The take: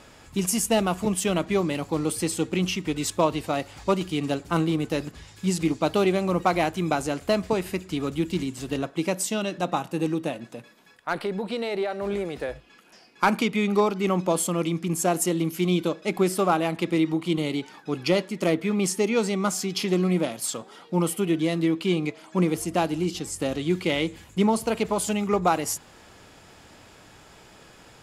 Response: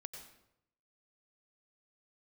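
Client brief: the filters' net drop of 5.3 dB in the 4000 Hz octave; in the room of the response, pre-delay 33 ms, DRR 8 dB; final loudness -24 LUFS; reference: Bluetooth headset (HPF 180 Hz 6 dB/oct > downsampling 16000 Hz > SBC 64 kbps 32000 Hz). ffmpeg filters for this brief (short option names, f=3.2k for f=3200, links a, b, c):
-filter_complex "[0:a]equalizer=f=4k:t=o:g=-7.5,asplit=2[a][b];[1:a]atrim=start_sample=2205,adelay=33[c];[b][c]afir=irnorm=-1:irlink=0,volume=-4dB[d];[a][d]amix=inputs=2:normalize=0,highpass=f=180:p=1,aresample=16000,aresample=44100,volume=2.5dB" -ar 32000 -c:a sbc -b:a 64k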